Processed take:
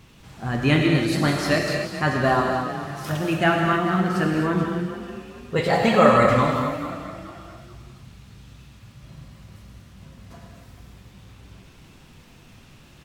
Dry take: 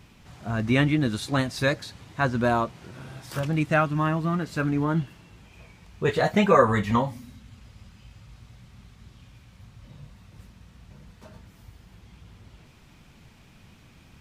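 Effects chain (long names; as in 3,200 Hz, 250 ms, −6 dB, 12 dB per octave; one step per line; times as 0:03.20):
surface crackle 190 per second −53 dBFS
on a send: echo with shifted repeats 472 ms, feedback 35%, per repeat +31 Hz, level −13 dB
on the sum: reverb whose tail is shaped and stops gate 330 ms flat, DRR 0 dB
wrong playback speed 44.1 kHz file played as 48 kHz
level +1 dB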